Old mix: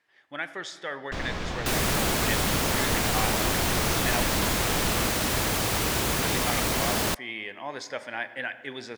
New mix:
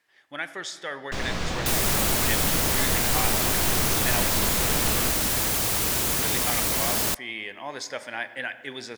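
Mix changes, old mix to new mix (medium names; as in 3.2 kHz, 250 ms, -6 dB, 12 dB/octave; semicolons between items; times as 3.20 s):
first sound: send on; second sound -3.0 dB; master: add treble shelf 5.7 kHz +10.5 dB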